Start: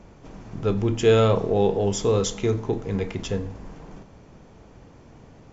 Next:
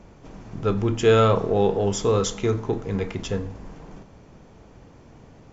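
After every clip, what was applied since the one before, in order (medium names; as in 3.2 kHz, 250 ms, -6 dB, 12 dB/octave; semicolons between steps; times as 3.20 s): dynamic bell 1.3 kHz, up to +6 dB, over -43 dBFS, Q 1.9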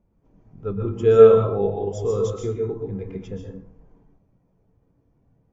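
plate-style reverb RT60 0.58 s, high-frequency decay 0.85×, pre-delay 110 ms, DRR 0.5 dB; spectral contrast expander 1.5:1; trim +1 dB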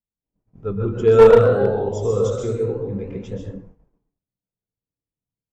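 ever faster or slower copies 195 ms, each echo +1 st, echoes 3, each echo -6 dB; expander -39 dBFS; one-sided clip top -9 dBFS; trim +2 dB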